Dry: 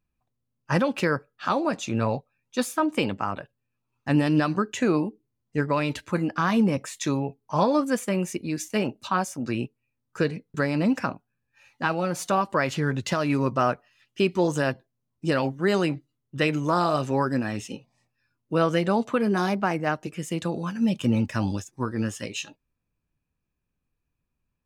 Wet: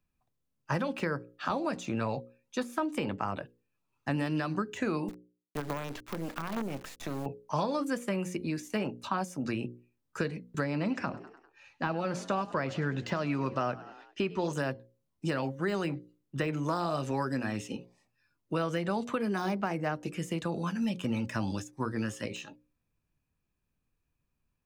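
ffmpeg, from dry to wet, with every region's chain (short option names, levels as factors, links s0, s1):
-filter_complex "[0:a]asettb=1/sr,asplit=3[s0][s1][s2];[s0]atrim=end=5.084[s3];[s1]atrim=start=5.08:end=7.26,asetpts=PTS-STARTPTS,afade=t=in:d=0.004:c=qsin,afade=t=out:st=2.176:d=0.004:c=qsin,lowpass=5300,acompressor=threshold=0.0447:ratio=5:attack=3.2:release=140:knee=1:detection=peak,acrusher=bits=5:dc=4:mix=0:aa=0.000001[s4];[s2]atrim=start=7.256[s5];[s3][s4]acrossfade=d=0.004:c1=hsin:c2=qsin[s6];[s6][s5]acrossfade=d=0.004:c1=qsin:c2=hsin,asettb=1/sr,asplit=3[s7][s8][s9];[s7]atrim=end=10.644[s10];[s8]atrim=start=10.64:end=14.53,asetpts=PTS-STARTPTS,afade=t=in:d=0.004:c=qsin,afade=t=out:st=3.886:d=0.004:c=qsin,lowpass=5900,asplit=5[s11][s12][s13][s14][s15];[s12]adelay=99,afreqshift=46,volume=0.0891[s16];[s13]adelay=198,afreqshift=92,volume=0.049[s17];[s14]adelay=297,afreqshift=138,volume=0.0269[s18];[s15]adelay=396,afreqshift=184,volume=0.0148[s19];[s11][s16][s17][s18][s19]amix=inputs=5:normalize=0,atrim=end_sample=171549[s20];[s9]atrim=start=14.526[s21];[s10][s20]acrossfade=d=0.004:c1=hsin:c2=qsin[s22];[s22][s21]acrossfade=d=0.004:c1=qsin:c2=hsin,deesser=0.8,bandreject=f=60:t=h:w=6,bandreject=f=120:t=h:w=6,bandreject=f=180:t=h:w=6,bandreject=f=240:t=h:w=6,bandreject=f=300:t=h:w=6,bandreject=f=360:t=h:w=6,bandreject=f=420:t=h:w=6,bandreject=f=480:t=h:w=6,bandreject=f=540:t=h:w=6,acrossover=split=120|950|1900[s23][s24][s25][s26];[s23]acompressor=threshold=0.00562:ratio=4[s27];[s24]acompressor=threshold=0.0282:ratio=4[s28];[s25]acompressor=threshold=0.01:ratio=4[s29];[s26]acompressor=threshold=0.00562:ratio=4[s30];[s27][s28][s29][s30]amix=inputs=4:normalize=0"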